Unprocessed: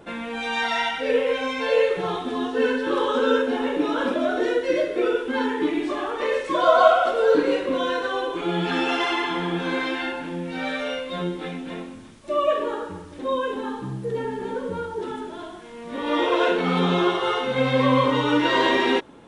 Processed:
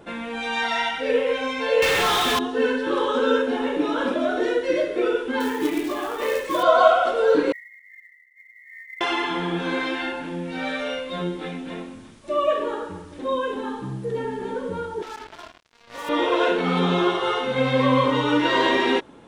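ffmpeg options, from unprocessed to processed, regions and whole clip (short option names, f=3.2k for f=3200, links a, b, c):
-filter_complex "[0:a]asettb=1/sr,asplit=3[a][b][c];[a]atrim=end=1.824[d];[b]atrim=start=1.82:end=2.39,asetpts=PTS-STARTPTS,afade=t=in:d=0.004:c=qsin,afade=t=out:st=0.566:d=0.004:c=qsin,tiltshelf=f=1.2k:g=-7.5,asplit=2[e][f];[f]highpass=f=720:p=1,volume=31dB,asoftclip=type=tanh:threshold=-13.5dB[g];[e][g]amix=inputs=2:normalize=0,lowpass=f=3.9k:p=1,volume=-6dB,acrusher=bits=6:dc=4:mix=0:aa=0.000001[h];[c]atrim=start=2.386[i];[d][h]acrossfade=d=0.004:c1=hsin:c2=qsin[j];[j][i]acrossfade=d=0.004:c1=qsin:c2=hsin,asettb=1/sr,asplit=3[k][l][m];[k]atrim=end=5.404[n];[l]atrim=start=5.4:end=6.63,asetpts=PTS-STARTPTS,afade=t=in:d=0.004:c=qsin,afade=t=out:st=1.226:d=0.004:c=qsin,bandreject=f=46.37:t=h:w=4,bandreject=f=92.74:t=h:w=4,bandreject=f=139.11:t=h:w=4,bandreject=f=185.48:t=h:w=4,bandreject=f=231.85:t=h:w=4,bandreject=f=278.22:t=h:w=4,bandreject=f=324.59:t=h:w=4,bandreject=f=370.96:t=h:w=4,bandreject=f=417.33:t=h:w=4,bandreject=f=463.7:t=h:w=4,bandreject=f=510.07:t=h:w=4,bandreject=f=556.44:t=h:w=4,bandreject=f=602.81:t=h:w=4,bandreject=f=649.18:t=h:w=4,bandreject=f=695.55:t=h:w=4,bandreject=f=741.92:t=h:w=4,bandreject=f=788.29:t=h:w=4,bandreject=f=834.66:t=h:w=4,bandreject=f=881.03:t=h:w=4,bandreject=f=927.4:t=h:w=4,bandreject=f=973.77:t=h:w=4,bandreject=f=1.02014k:t=h:w=4,bandreject=f=1.06651k:t=h:w=4,bandreject=f=1.11288k:t=h:w=4,bandreject=f=1.15925k:t=h:w=4,bandreject=f=1.20562k:t=h:w=4,bandreject=f=1.25199k:t=h:w=4,bandreject=f=1.29836k:t=h:w=4,bandreject=f=1.34473k:t=h:w=4,bandreject=f=1.3911k:t=h:w=4,bandreject=f=1.43747k:t=h:w=4,bandreject=f=1.48384k:t=h:w=4,bandreject=f=1.53021k:t=h:w=4,bandreject=f=1.57658k:t=h:w=4,bandreject=f=1.62295k:t=h:w=4,bandreject=f=1.66932k:t=h:w=4,bandreject=f=1.71569k:t=h:w=4,bandreject=f=1.76206k:t=h:w=4,bandreject=f=1.80843k:t=h:w=4,bandreject=f=1.8548k:t=h:w=4,acrusher=bits=4:mode=log:mix=0:aa=0.000001[o];[m]atrim=start=6.626[p];[n][o]acrossfade=d=0.004:c1=hsin:c2=qsin[q];[q][p]acrossfade=d=0.004:c1=qsin:c2=hsin,asettb=1/sr,asplit=3[r][s][t];[r]atrim=end=7.524[u];[s]atrim=start=7.52:end=9.01,asetpts=PTS-STARTPTS,afade=t=in:d=0.004:c=qsin,afade=t=out:st=1.486:d=0.004:c=qsin,asuperpass=centerf=2000:order=20:qfactor=5.6,acrusher=bits=7:mode=log:mix=0:aa=0.000001[v];[t]atrim=start=9.006[w];[u][v]acrossfade=d=0.004:c1=hsin:c2=qsin[x];[x][w]acrossfade=d=0.004:c1=qsin:c2=hsin,asettb=1/sr,asplit=3[y][z][aa];[y]atrim=end=15.024[ab];[z]atrim=start=15.02:end=16.09,asetpts=PTS-STARTPTS,afade=t=in:d=0.004:c=qsin,afade=t=out:st=1.066:d=0.004:c=qsin,highpass=710,lowpass=3.2k,acrusher=bits=5:mix=0:aa=0.5[ac];[aa]atrim=start=16.086[ad];[ab][ac]acrossfade=d=0.004:c1=hsin:c2=qsin[ae];[ae][ad]acrossfade=d=0.004:c1=qsin:c2=hsin"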